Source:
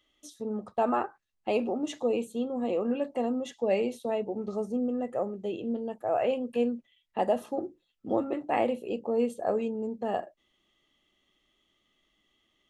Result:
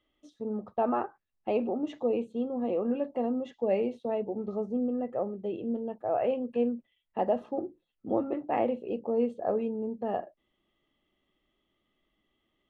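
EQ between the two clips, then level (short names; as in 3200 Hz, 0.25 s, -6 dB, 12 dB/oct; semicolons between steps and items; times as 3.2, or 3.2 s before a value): LPF 2400 Hz 12 dB/oct; bell 1800 Hz -4 dB 1.9 oct; 0.0 dB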